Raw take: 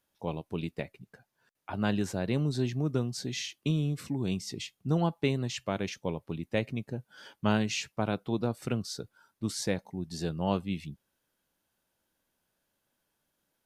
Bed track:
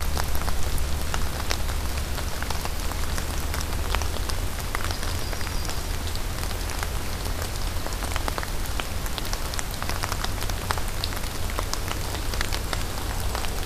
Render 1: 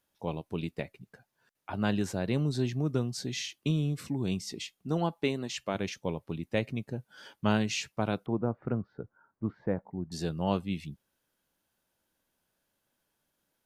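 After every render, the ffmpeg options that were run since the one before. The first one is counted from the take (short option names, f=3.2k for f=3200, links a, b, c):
-filter_complex "[0:a]asettb=1/sr,asplit=3[a][b][c];[a]atrim=end=4.524[d];[b]atrim=start=4.52:end=5.75,asetpts=PTS-STARTPTS,afade=t=in:d=0.004:c=qsin,afade=t=out:st=1.226:d=0.004:c=qsin,equalizer=f=110:t=o:w=0.77:g=-12.5[e];[c]atrim=start=5.746[f];[d][e]acrossfade=d=0.004:c1=hsin:c2=qsin[g];[g][f]acrossfade=d=0.004:c1=qsin:c2=hsin,asettb=1/sr,asplit=3[h][i][j];[h]atrim=end=8.264[k];[i]atrim=start=8.26:end=10.12,asetpts=PTS-STARTPTS,afade=t=in:d=0.004:c=qsin,afade=t=out:st=1.856:d=0.004:c=qsin,lowpass=f=1.5k:w=0.5412,lowpass=f=1.5k:w=1.3066[l];[j]atrim=start=10.116[m];[k][l]acrossfade=d=0.004:c1=hsin:c2=qsin[n];[n][m]acrossfade=d=0.004:c1=qsin:c2=hsin"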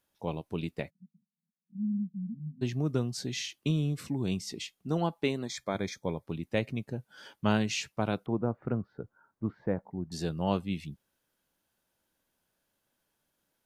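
-filter_complex "[0:a]asplit=3[a][b][c];[a]afade=t=out:st=0.89:d=0.02[d];[b]asuperpass=centerf=190:order=8:qfactor=2.7,afade=t=in:st=0.89:d=0.02,afade=t=out:st=2.61:d=0.02[e];[c]afade=t=in:st=2.61:d=0.02[f];[d][e][f]amix=inputs=3:normalize=0,asplit=3[g][h][i];[g]afade=t=out:st=5.44:d=0.02[j];[h]asuperstop=centerf=2800:order=20:qfactor=3.9,afade=t=in:st=5.44:d=0.02,afade=t=out:st=6.26:d=0.02[k];[i]afade=t=in:st=6.26:d=0.02[l];[j][k][l]amix=inputs=3:normalize=0"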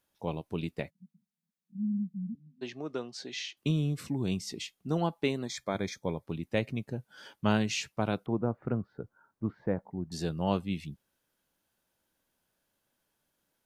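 -filter_complex "[0:a]asettb=1/sr,asplit=3[a][b][c];[a]atrim=end=2.354[d];[b]atrim=start=2.35:end=3.57,asetpts=PTS-STARTPTS,afade=t=in:d=0.004:c=qsin,afade=t=out:st=1.216:d=0.004:c=qsin,highpass=410,lowpass=4.9k[e];[c]atrim=start=3.566[f];[d][e]acrossfade=d=0.004:c1=hsin:c2=qsin[g];[g][f]acrossfade=d=0.004:c1=qsin:c2=hsin"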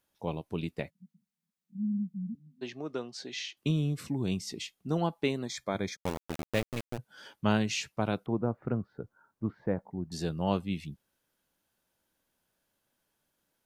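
-filter_complex "[0:a]asplit=3[a][b][c];[a]afade=t=out:st=5.95:d=0.02[d];[b]aeval=exprs='val(0)*gte(abs(val(0)),0.0299)':c=same,afade=t=in:st=5.95:d=0.02,afade=t=out:st=6.97:d=0.02[e];[c]afade=t=in:st=6.97:d=0.02[f];[d][e][f]amix=inputs=3:normalize=0"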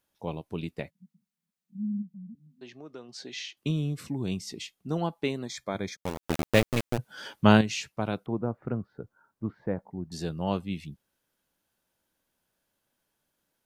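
-filter_complex "[0:a]asplit=3[a][b][c];[a]afade=t=out:st=2.01:d=0.02[d];[b]acompressor=threshold=-53dB:ratio=1.5:attack=3.2:release=140:knee=1:detection=peak,afade=t=in:st=2.01:d=0.02,afade=t=out:st=3.08:d=0.02[e];[c]afade=t=in:st=3.08:d=0.02[f];[d][e][f]amix=inputs=3:normalize=0,asplit=3[g][h][i];[g]atrim=end=6.232[j];[h]atrim=start=6.228:end=7.612,asetpts=PTS-STARTPTS,volume=8.5dB[k];[i]atrim=start=7.608[l];[j][k]acrossfade=d=0.004:c1=hsin:c2=hsin[m];[m][l]acrossfade=d=0.004:c1=hsin:c2=hsin"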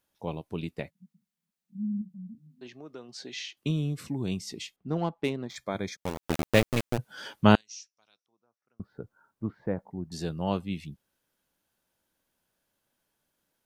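-filter_complex "[0:a]asettb=1/sr,asplit=3[a][b][c];[a]atrim=end=1.984[d];[b]atrim=start=1.98:end=2.68,asetpts=PTS-STARTPTS,afade=t=in:d=0.004:c=qsin,afade=t=out:st=0.696:d=0.004:c=qsin,asplit=2[e][f];[f]adelay=32,volume=-9.5dB[g];[e][g]amix=inputs=2:normalize=0,atrim=end_sample=30870[h];[c]atrim=start=2.676[i];[d][h]acrossfade=d=0.004:c1=hsin:c2=qsin[j];[j][i]acrossfade=d=0.004:c1=qsin:c2=hsin,asettb=1/sr,asplit=3[k][l][m];[k]atrim=end=4.764[n];[l]atrim=start=4.76:end=5.56,asetpts=PTS-STARTPTS,afade=t=in:d=0.004:c=qsin,afade=t=out:st=0.796:d=0.004:c=qsin,adynamicsmooth=sensitivity=5:basefreq=2.4k[o];[m]atrim=start=5.556[p];[n][o]acrossfade=d=0.004:c1=hsin:c2=qsin[q];[q][p]acrossfade=d=0.004:c1=qsin:c2=hsin,asettb=1/sr,asplit=3[r][s][t];[r]atrim=end=7.554[u];[s]atrim=start=7.55:end=8.8,asetpts=PTS-STARTPTS,afade=t=in:d=0.004:c=qsin,afade=t=out:st=1.246:d=0.004:c=qsin,bandpass=f=5.7k:t=q:w=9.4[v];[t]atrim=start=8.796[w];[u][v]acrossfade=d=0.004:c1=hsin:c2=qsin[x];[x][w]acrossfade=d=0.004:c1=qsin:c2=hsin"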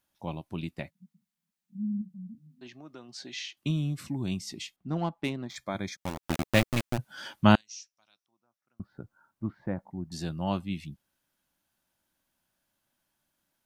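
-af "equalizer=f=450:t=o:w=0.27:g=-14"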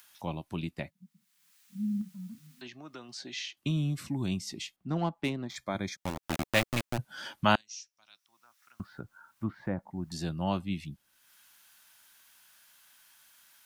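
-filter_complex "[0:a]acrossover=split=520|1000[a][b][c];[a]alimiter=limit=-23dB:level=0:latency=1[d];[c]acompressor=mode=upward:threshold=-43dB:ratio=2.5[e];[d][b][e]amix=inputs=3:normalize=0"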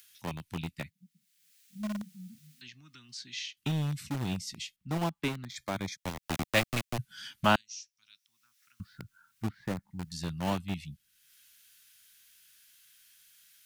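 -filter_complex "[0:a]aeval=exprs='0.335*(cos(1*acos(clip(val(0)/0.335,-1,1)))-cos(1*PI/2))+0.0075*(cos(4*acos(clip(val(0)/0.335,-1,1)))-cos(4*PI/2))+0.00237*(cos(5*acos(clip(val(0)/0.335,-1,1)))-cos(5*PI/2))':c=same,acrossover=split=210|1600[a][b][c];[b]aeval=exprs='val(0)*gte(abs(val(0)),0.0224)':c=same[d];[a][d][c]amix=inputs=3:normalize=0"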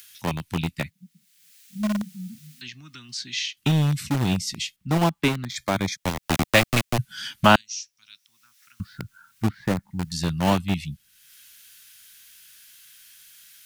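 -af "volume=10.5dB,alimiter=limit=-3dB:level=0:latency=1"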